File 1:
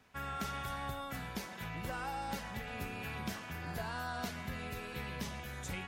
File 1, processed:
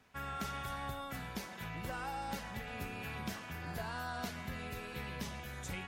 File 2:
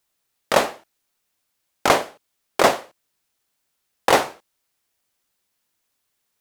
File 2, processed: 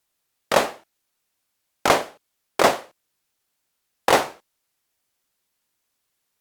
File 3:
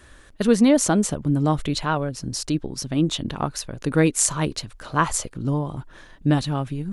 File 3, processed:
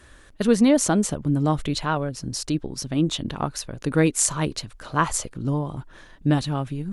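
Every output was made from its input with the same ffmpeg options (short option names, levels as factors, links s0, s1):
-af "volume=0.891" -ar 48000 -c:a libopus -b:a 96k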